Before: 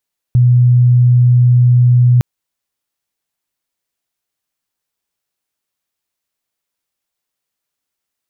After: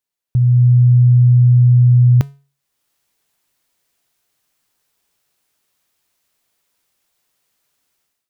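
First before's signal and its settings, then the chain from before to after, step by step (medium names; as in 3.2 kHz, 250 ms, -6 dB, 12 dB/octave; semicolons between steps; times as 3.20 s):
tone sine 123 Hz -5.5 dBFS 1.86 s
level rider gain up to 16 dB; feedback comb 140 Hz, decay 0.37 s, harmonics odd, mix 50%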